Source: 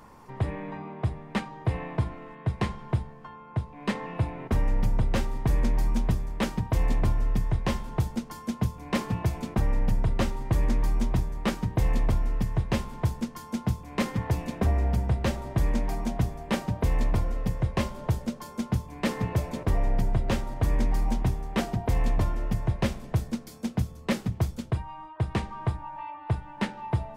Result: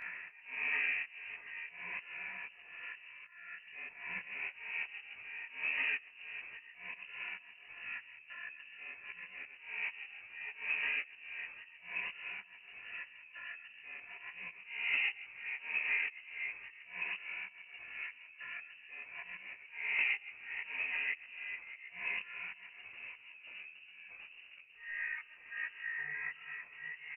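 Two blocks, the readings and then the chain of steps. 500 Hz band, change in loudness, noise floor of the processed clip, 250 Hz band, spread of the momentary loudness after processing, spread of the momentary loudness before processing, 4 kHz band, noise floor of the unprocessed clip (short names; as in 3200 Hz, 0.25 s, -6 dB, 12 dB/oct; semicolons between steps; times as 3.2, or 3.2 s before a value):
-28.5 dB, -10.0 dB, -58 dBFS, under -35 dB, 15 LU, 6 LU, -7.0 dB, -46 dBFS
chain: HPF 340 Hz 12 dB/oct; low shelf 450 Hz +9 dB; compressor 10:1, threshold -30 dBFS, peak gain reduction 10.5 dB; frequency-shifting echo 0.11 s, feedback 53%, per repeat -150 Hz, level -17 dB; auto swell 0.576 s; tremolo 1.4 Hz, depth 42%; air absorption 310 m; doubler 13 ms -11 dB; inverted band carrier 2800 Hz; detuned doubles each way 53 cents; gain +11 dB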